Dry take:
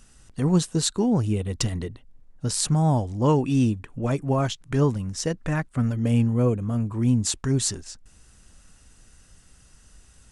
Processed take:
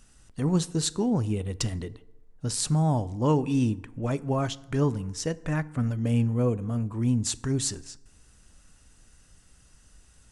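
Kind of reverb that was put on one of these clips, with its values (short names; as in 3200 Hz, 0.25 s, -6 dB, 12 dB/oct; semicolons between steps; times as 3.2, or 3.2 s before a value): FDN reverb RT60 0.97 s, low-frequency decay 0.9×, high-frequency decay 0.55×, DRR 16.5 dB; gain -3.5 dB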